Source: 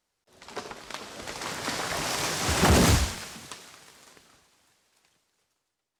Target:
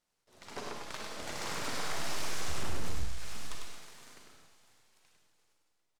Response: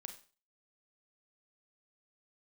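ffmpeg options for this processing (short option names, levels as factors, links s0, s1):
-filter_complex "[0:a]aeval=exprs='if(lt(val(0),0),0.447*val(0),val(0))':c=same,asettb=1/sr,asplit=3[s0][s1][s2];[s0]atrim=end=1.504[s3];[s1]atrim=start=1.5:end=3.55,asetpts=PTS-STARTPTS,afade=t=in:d=0.004:c=qsin,afade=t=out:st=2.046:d=0.004:c=qsin,asubboost=boost=11:cutoff=63[s4];[s2]atrim=start=3.546[s5];[s3][s4]acrossfade=d=0.004:c1=hsin:c2=qsin[s6];[s6][s5]acrossfade=d=0.004:c1=qsin:c2=hsin,acompressor=threshold=0.0282:ratio=8,asoftclip=type=tanh:threshold=0.0531,aecho=1:1:100:0.631[s7];[1:a]atrim=start_sample=2205,asetrate=37926,aresample=44100[s8];[s7][s8]afir=irnorm=-1:irlink=0,volume=1.41"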